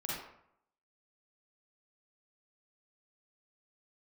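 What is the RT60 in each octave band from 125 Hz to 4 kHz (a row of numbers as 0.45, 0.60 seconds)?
0.75, 0.70, 0.70, 0.70, 0.60, 0.45 seconds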